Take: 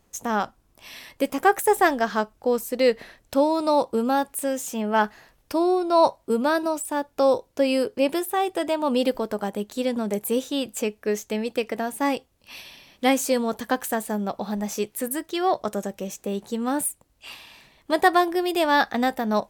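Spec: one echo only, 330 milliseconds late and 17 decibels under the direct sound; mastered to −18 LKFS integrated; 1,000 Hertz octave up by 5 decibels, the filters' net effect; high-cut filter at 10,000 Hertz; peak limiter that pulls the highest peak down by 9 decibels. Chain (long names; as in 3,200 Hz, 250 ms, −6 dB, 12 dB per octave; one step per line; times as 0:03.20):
low-pass filter 10,000 Hz
parametric band 1,000 Hz +6.5 dB
brickwall limiter −11 dBFS
single-tap delay 330 ms −17 dB
level +6 dB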